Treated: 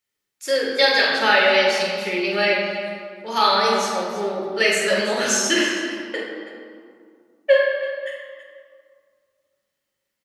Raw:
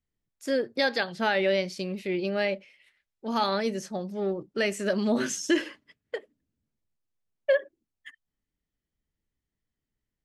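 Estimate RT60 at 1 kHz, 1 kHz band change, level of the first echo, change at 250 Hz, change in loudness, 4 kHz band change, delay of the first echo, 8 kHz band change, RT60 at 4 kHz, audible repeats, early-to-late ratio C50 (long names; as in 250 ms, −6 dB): 2.2 s, +11.0 dB, −5.5 dB, +1.5 dB, +8.5 dB, +13.5 dB, 45 ms, +12.5 dB, 1.3 s, 2, 0.0 dB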